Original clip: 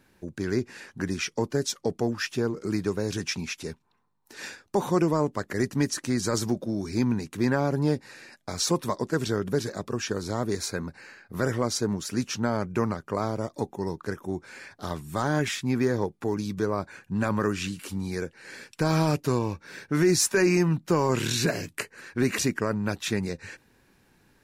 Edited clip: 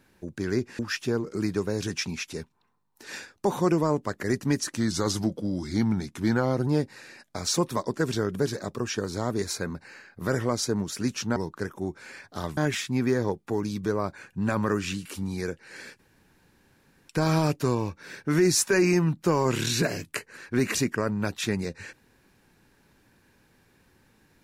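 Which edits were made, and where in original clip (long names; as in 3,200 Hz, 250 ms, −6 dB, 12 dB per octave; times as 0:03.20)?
0:00.79–0:02.09: remove
0:06.07–0:07.80: play speed 91%
0:12.49–0:13.83: remove
0:15.04–0:15.31: remove
0:18.73: splice in room tone 1.10 s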